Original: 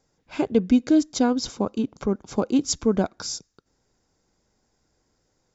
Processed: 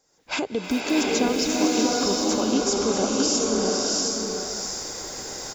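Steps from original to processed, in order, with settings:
0:00.64–0:01.15: one scale factor per block 7 bits
camcorder AGC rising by 40 dB per second
bass and treble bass −12 dB, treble +6 dB
brickwall limiter −16.5 dBFS, peak gain reduction 10 dB
single-tap delay 645 ms −5.5 dB
slow-attack reverb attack 760 ms, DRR −3.5 dB

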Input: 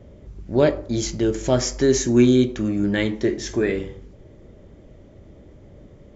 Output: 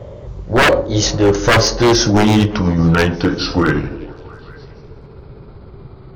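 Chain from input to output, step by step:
pitch glide at a constant tempo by −7.5 semitones starting unshifted
octave-band graphic EQ 125/250/500/1,000/4,000 Hz +9/−8/+9/+11/+6 dB
wave folding −12.5 dBFS
on a send: echo through a band-pass that steps 169 ms, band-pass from 240 Hz, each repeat 0.7 octaves, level −10.5 dB
on the sum: level +7.5 dB

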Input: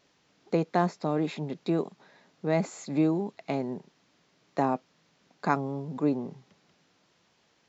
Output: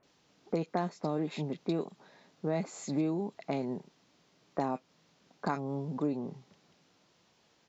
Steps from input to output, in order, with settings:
downward compressor 2.5 to 1, threshold −30 dBFS, peak gain reduction 8 dB
multiband delay without the direct sound lows, highs 30 ms, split 1,800 Hz

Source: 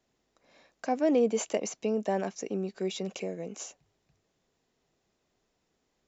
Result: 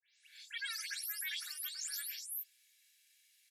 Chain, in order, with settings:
every frequency bin delayed by itself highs late, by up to 537 ms
inverse Chebyshev high-pass filter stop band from 360 Hz, stop band 50 dB
comb filter 3.1 ms, depth 43%
reversed playback
downward compressor 5 to 1, threshold −52 dBFS, peak gain reduction 14 dB
reversed playback
frequency shifter +310 Hz
wrong playback speed 45 rpm record played at 78 rpm
level +12.5 dB

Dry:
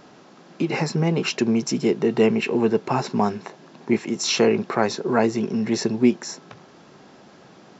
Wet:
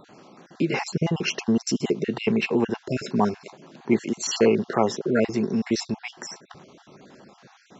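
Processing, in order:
time-frequency cells dropped at random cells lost 37%

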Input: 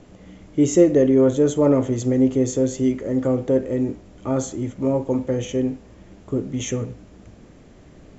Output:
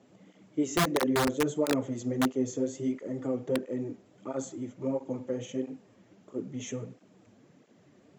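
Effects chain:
high-pass filter 130 Hz 24 dB per octave
wrap-around overflow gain 7.5 dB
through-zero flanger with one copy inverted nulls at 1.5 Hz, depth 7.1 ms
level −8 dB

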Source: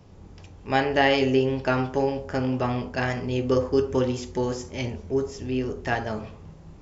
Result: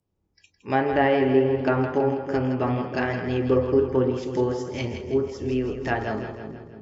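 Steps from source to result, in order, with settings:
noise reduction from a noise print of the clip's start 29 dB
treble cut that deepens with the level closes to 1,700 Hz, closed at −19.5 dBFS
parametric band 330 Hz +5 dB 0.4 octaves
on a send: echo with a time of its own for lows and highs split 480 Hz, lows 317 ms, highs 163 ms, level −8 dB

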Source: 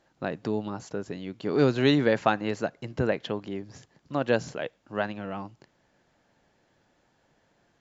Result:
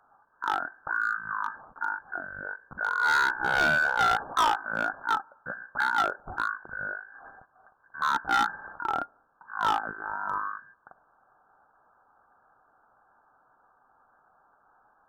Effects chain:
parametric band 1,400 Hz +13 dB 2 octaves
voice inversion scrambler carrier 3,200 Hz
change of speed 0.517×
gain into a clipping stage and back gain 15.5 dB
level −3.5 dB

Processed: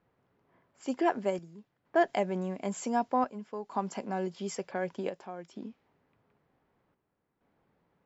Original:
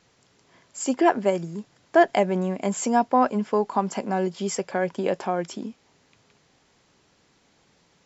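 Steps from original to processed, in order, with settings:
low-pass that shuts in the quiet parts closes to 1,400 Hz, open at −20.5 dBFS
square-wave tremolo 0.54 Hz, depth 60%, duty 75%
level −8.5 dB

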